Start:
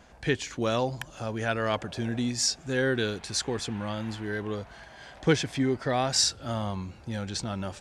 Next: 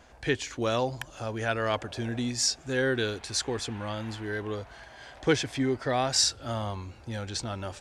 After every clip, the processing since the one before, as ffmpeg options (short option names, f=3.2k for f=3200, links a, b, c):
-af "equalizer=f=180:t=o:w=0.38:g=-11.5"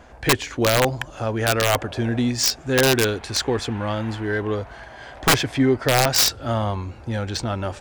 -filter_complex "[0:a]asplit=2[a][b];[b]adynamicsmooth=sensitivity=3.5:basefreq=2.8k,volume=1dB[c];[a][c]amix=inputs=2:normalize=0,aeval=exprs='(mod(3.98*val(0)+1,2)-1)/3.98':c=same,volume=3dB"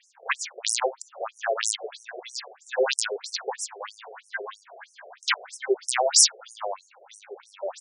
-filter_complex "[0:a]acrossover=split=5300[a][b];[b]crystalizer=i=2:c=0[c];[a][c]amix=inputs=2:normalize=0,afftfilt=real='re*between(b*sr/1024,500*pow(7600/500,0.5+0.5*sin(2*PI*3.1*pts/sr))/1.41,500*pow(7600/500,0.5+0.5*sin(2*PI*3.1*pts/sr))*1.41)':imag='im*between(b*sr/1024,500*pow(7600/500,0.5+0.5*sin(2*PI*3.1*pts/sr))/1.41,500*pow(7600/500,0.5+0.5*sin(2*PI*3.1*pts/sr))*1.41)':win_size=1024:overlap=0.75"